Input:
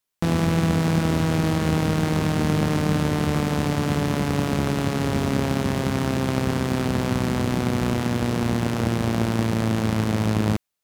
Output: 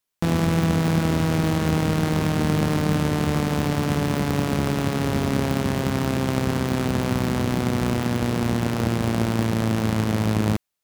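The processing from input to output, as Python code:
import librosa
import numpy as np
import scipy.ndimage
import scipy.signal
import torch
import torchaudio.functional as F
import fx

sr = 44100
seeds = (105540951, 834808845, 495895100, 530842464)

y = fx.tracing_dist(x, sr, depth_ms=0.11)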